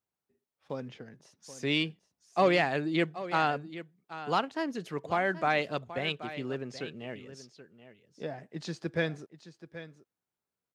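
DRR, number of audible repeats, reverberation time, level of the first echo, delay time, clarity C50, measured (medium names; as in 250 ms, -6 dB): no reverb, 1, no reverb, -14.0 dB, 779 ms, no reverb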